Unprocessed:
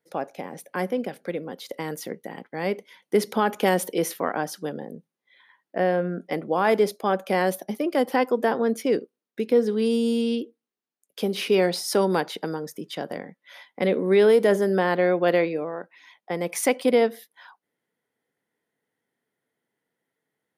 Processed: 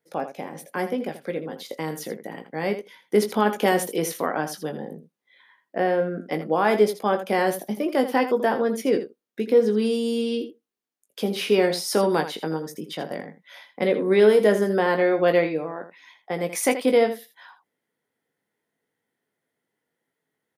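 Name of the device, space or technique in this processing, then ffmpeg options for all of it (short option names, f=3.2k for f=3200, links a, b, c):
slapback doubling: -filter_complex "[0:a]asplit=3[a][b][c];[b]adelay=19,volume=-7.5dB[d];[c]adelay=81,volume=-11.5dB[e];[a][d][e]amix=inputs=3:normalize=0"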